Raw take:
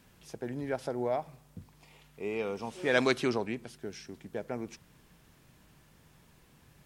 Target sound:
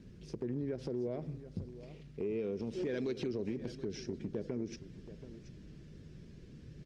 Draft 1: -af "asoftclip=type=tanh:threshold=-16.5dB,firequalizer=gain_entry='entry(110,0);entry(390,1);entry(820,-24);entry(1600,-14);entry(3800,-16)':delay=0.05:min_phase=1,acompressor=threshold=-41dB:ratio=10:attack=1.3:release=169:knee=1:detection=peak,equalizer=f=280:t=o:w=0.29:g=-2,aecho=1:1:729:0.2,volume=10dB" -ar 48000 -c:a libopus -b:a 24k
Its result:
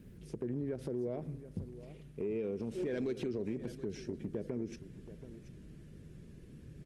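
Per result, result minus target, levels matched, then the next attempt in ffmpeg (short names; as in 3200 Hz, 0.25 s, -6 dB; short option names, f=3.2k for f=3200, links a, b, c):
soft clip: distortion +11 dB; 4000 Hz band -4.5 dB
-af "asoftclip=type=tanh:threshold=-9dB,firequalizer=gain_entry='entry(110,0);entry(390,1);entry(820,-24);entry(1600,-14);entry(3800,-16)':delay=0.05:min_phase=1,acompressor=threshold=-41dB:ratio=10:attack=1.3:release=169:knee=1:detection=peak,equalizer=f=280:t=o:w=0.29:g=-2,aecho=1:1:729:0.2,volume=10dB" -ar 48000 -c:a libopus -b:a 24k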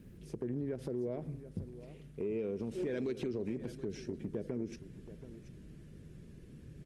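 4000 Hz band -4.5 dB
-af "asoftclip=type=tanh:threshold=-9dB,firequalizer=gain_entry='entry(110,0);entry(390,1);entry(820,-24);entry(1600,-14);entry(3800,-16)':delay=0.05:min_phase=1,acompressor=threshold=-41dB:ratio=10:attack=1.3:release=169:knee=1:detection=peak,lowpass=f=5.3k:t=q:w=2,equalizer=f=280:t=o:w=0.29:g=-2,aecho=1:1:729:0.2,volume=10dB" -ar 48000 -c:a libopus -b:a 24k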